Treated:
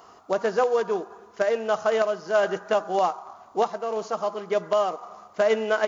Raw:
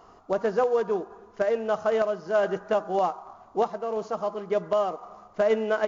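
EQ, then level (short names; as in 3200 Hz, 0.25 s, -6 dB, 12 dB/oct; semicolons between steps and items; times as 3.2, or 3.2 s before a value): HPF 55 Hz; tilt +2 dB/oct; +3.0 dB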